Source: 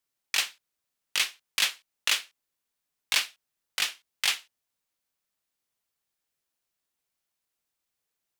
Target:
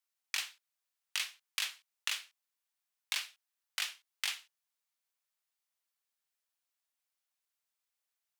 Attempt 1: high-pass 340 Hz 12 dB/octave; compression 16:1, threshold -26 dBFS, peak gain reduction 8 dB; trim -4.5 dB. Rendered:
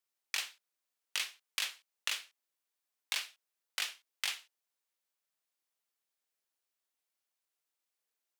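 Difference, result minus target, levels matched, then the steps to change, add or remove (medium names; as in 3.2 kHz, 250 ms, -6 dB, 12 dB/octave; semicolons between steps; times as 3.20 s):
250 Hz band +10.5 dB
change: high-pass 740 Hz 12 dB/octave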